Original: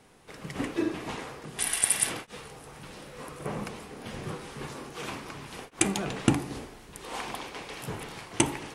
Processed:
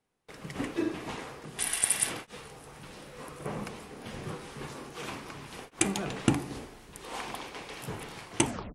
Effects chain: tape stop on the ending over 0.30 s; gate with hold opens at -43 dBFS; trim -2 dB

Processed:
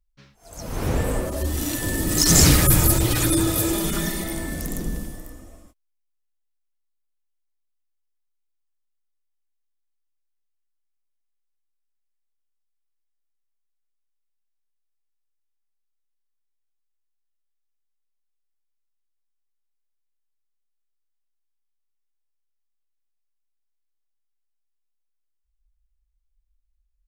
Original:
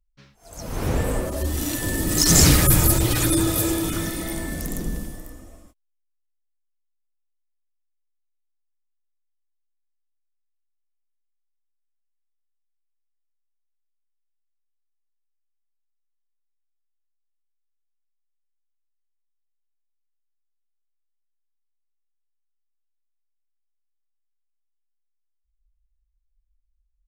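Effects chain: 3.73–4.24 s: comb 5 ms, depth 85%

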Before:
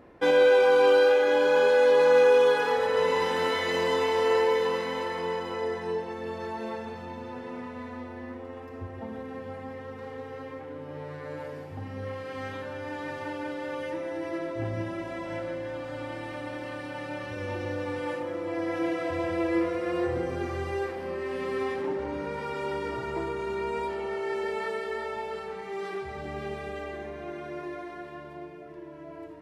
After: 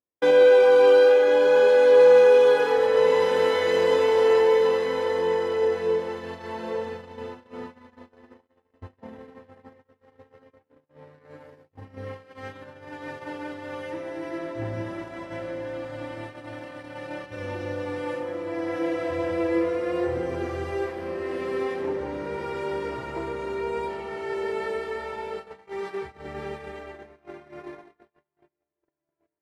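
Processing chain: echo that smears into a reverb 1545 ms, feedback 41%, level -12 dB; gate -35 dBFS, range -45 dB; dynamic bell 460 Hz, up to +6 dB, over -36 dBFS, Q 3.3

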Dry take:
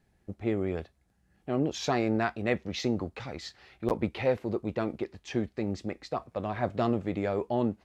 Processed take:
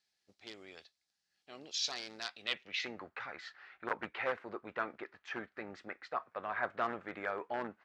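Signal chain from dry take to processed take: one-sided wavefolder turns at -19.5 dBFS; harmony voices -5 st -15 dB; band-pass sweep 4.7 kHz -> 1.5 kHz, 2.23–3.14 s; trim +5.5 dB

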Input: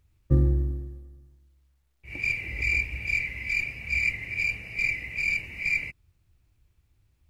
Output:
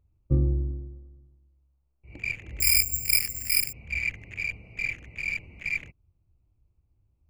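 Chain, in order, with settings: local Wiener filter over 25 samples; 2.60–3.73 s: careless resampling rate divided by 6×, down filtered, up zero stuff; trim -2 dB

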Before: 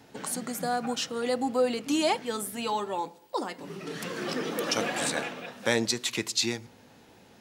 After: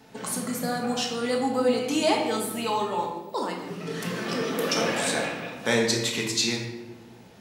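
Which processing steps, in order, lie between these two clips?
simulated room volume 510 m³, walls mixed, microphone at 1.5 m

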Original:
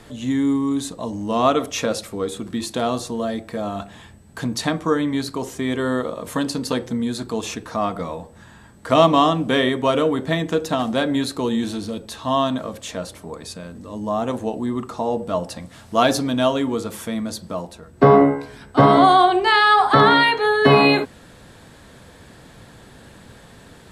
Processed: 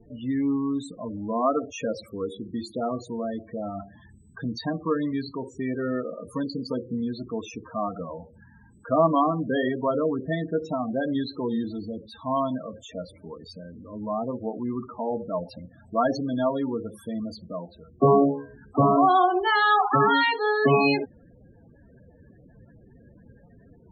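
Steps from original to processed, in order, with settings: vibrato 0.44 Hz 6.2 cents; loudest bins only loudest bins 16; trim -5.5 dB

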